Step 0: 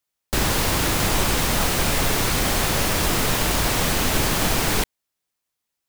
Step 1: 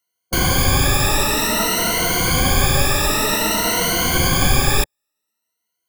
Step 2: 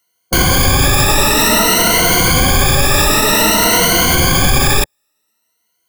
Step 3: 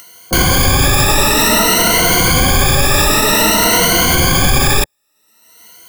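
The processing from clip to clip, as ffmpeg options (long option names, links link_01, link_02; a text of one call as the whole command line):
ffmpeg -i in.wav -af "afftfilt=real='re*pow(10,21/40*sin(2*PI*(1.9*log(max(b,1)*sr/1024/100)/log(2)-(0.53)*(pts-256)/sr)))':imag='im*pow(10,21/40*sin(2*PI*(1.9*log(max(b,1)*sr/1024/100)/log(2)-(0.53)*(pts-256)/sr)))':win_size=1024:overlap=0.75,volume=-1dB" out.wav
ffmpeg -i in.wav -af "alimiter=level_in=12dB:limit=-1dB:release=50:level=0:latency=1,volume=-1dB" out.wav
ffmpeg -i in.wav -af "acompressor=mode=upward:threshold=-19dB:ratio=2.5" out.wav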